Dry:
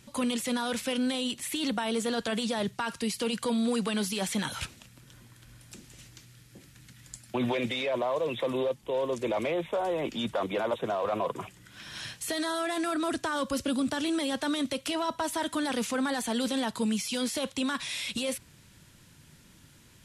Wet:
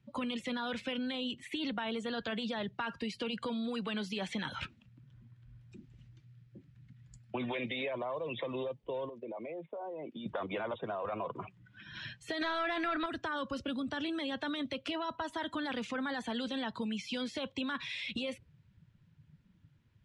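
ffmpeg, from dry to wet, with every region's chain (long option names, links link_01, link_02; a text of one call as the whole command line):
ffmpeg -i in.wav -filter_complex "[0:a]asettb=1/sr,asplit=3[link_01][link_02][link_03];[link_01]atrim=end=9.094[link_04];[link_02]atrim=start=9.09:end=10.26,asetpts=PTS-STARTPTS,afade=type=in:duration=0.004:curve=qsin,afade=type=out:start_time=1.166:duration=0.004:curve=qsin,agate=range=-11dB:threshold=-40dB:ratio=16:release=100:detection=peak,acompressor=threshold=-39dB:ratio=5:attack=3.2:release=140:knee=1:detection=peak,highpass=140,lowpass=5800[link_05];[link_03]atrim=start=10.256[link_06];[link_04][link_05]acrossfade=duration=0.004:curve1=hsin:curve2=qsin[link_07];[link_07][link_06]acrossfade=duration=0.004:curve1=qsin:curve2=hsin,asettb=1/sr,asplit=3[link_08][link_09][link_10];[link_08]atrim=end=12.414[link_11];[link_09]atrim=start=12.41:end=13.06,asetpts=PTS-STARTPTS,afade=type=in:duration=0.004:curve=qsin,afade=type=out:start_time=0.646:duration=0.004:curve=qsin,lowpass=9500,acontrast=51,asplit=2[link_12][link_13];[link_13]highpass=frequency=720:poles=1,volume=10dB,asoftclip=type=tanh:threshold=-14.5dB[link_14];[link_12][link_14]amix=inputs=2:normalize=0,lowpass=frequency=2800:poles=1,volume=-6dB[link_15];[link_10]atrim=start=13.056[link_16];[link_11][link_15]acrossfade=duration=0.004:curve1=hsin:curve2=qsin[link_17];[link_17][link_16]acrossfade=duration=0.004:curve1=qsin:curve2=hsin,afftdn=noise_reduction=18:noise_floor=-43,lowpass=3000,acrossover=split=140|1600[link_18][link_19][link_20];[link_18]acompressor=threshold=-51dB:ratio=4[link_21];[link_19]acompressor=threshold=-37dB:ratio=4[link_22];[link_20]acompressor=threshold=-37dB:ratio=4[link_23];[link_21][link_22][link_23]amix=inputs=3:normalize=0" out.wav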